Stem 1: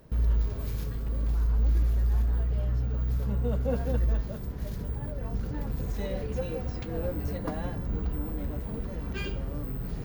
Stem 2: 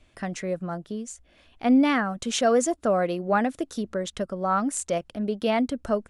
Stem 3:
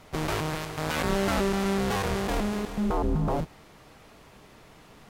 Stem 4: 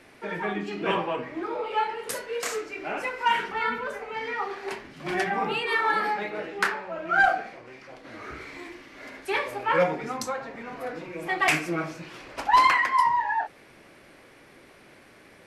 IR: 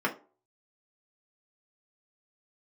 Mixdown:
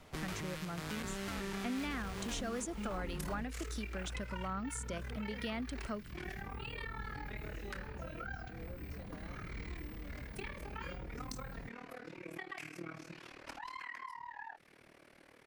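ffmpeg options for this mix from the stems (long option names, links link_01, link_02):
-filter_complex "[0:a]adelay=1650,volume=-13dB[link_01];[1:a]volume=-5dB[link_02];[2:a]volume=-7.5dB[link_03];[3:a]acompressor=threshold=-30dB:ratio=12,tremolo=f=38:d=0.889,adelay=1100,volume=-5.5dB[link_04];[link_01][link_02][link_03][link_04]amix=inputs=4:normalize=0,acrossover=split=400|1100[link_05][link_06][link_07];[link_05]acompressor=threshold=-40dB:ratio=4[link_08];[link_06]acompressor=threshold=-58dB:ratio=4[link_09];[link_07]acompressor=threshold=-42dB:ratio=4[link_10];[link_08][link_09][link_10]amix=inputs=3:normalize=0"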